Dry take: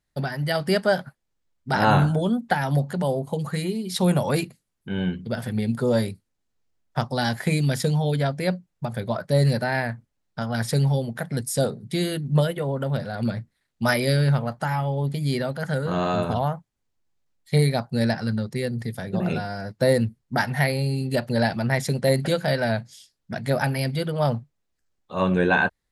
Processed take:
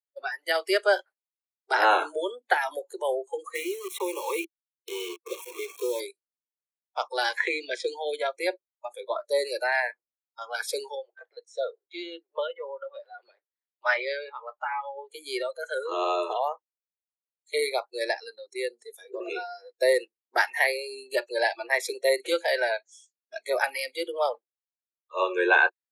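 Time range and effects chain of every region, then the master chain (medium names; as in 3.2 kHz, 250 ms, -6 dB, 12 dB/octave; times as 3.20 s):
3.55–6.00 s: static phaser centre 980 Hz, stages 8 + word length cut 6-bit, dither none + three bands compressed up and down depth 70%
7.37–7.88 s: low-pass 4.3 kHz + three bands compressed up and down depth 70%
10.95–15.10 s: high-pass 540 Hz + distance through air 230 m
whole clip: spectral noise reduction 23 dB; steep high-pass 330 Hz 96 dB/octave; dynamic bell 2 kHz, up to +5 dB, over -39 dBFS, Q 1; trim -2 dB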